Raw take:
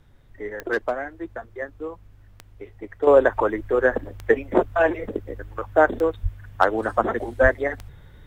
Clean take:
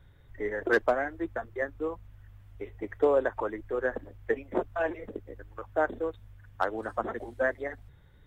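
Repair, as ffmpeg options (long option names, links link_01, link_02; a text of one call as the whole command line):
ffmpeg -i in.wav -filter_complex "[0:a]adeclick=threshold=4,asplit=3[link_01][link_02][link_03];[link_01]afade=type=out:start_time=6.22:duration=0.02[link_04];[link_02]highpass=frequency=140:width=0.5412,highpass=frequency=140:width=1.3066,afade=type=in:start_time=6.22:duration=0.02,afade=type=out:start_time=6.34:duration=0.02[link_05];[link_03]afade=type=in:start_time=6.34:duration=0.02[link_06];[link_04][link_05][link_06]amix=inputs=3:normalize=0,asplit=3[link_07][link_08][link_09];[link_07]afade=type=out:start_time=7.42:duration=0.02[link_10];[link_08]highpass=frequency=140:width=0.5412,highpass=frequency=140:width=1.3066,afade=type=in:start_time=7.42:duration=0.02,afade=type=out:start_time=7.54:duration=0.02[link_11];[link_09]afade=type=in:start_time=7.54:duration=0.02[link_12];[link_10][link_11][link_12]amix=inputs=3:normalize=0,agate=range=-21dB:threshold=-41dB,asetnsamples=nb_out_samples=441:pad=0,asendcmd='3.07 volume volume -10.5dB',volume=0dB" out.wav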